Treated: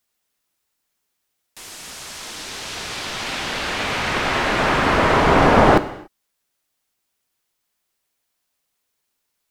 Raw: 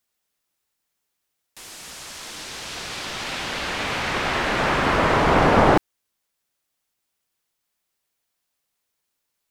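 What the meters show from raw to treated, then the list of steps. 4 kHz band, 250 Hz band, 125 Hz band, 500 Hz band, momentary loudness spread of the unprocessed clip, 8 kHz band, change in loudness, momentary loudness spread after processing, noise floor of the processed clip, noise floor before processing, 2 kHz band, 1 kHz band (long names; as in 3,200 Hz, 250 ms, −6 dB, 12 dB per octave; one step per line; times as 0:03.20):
+3.0 dB, +3.0 dB, +2.5 dB, +3.0 dB, 19 LU, +3.0 dB, +3.0 dB, 19 LU, −76 dBFS, −78 dBFS, +3.0 dB, +3.0 dB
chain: reverb whose tail is shaped and stops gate 310 ms falling, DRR 11.5 dB
level +2.5 dB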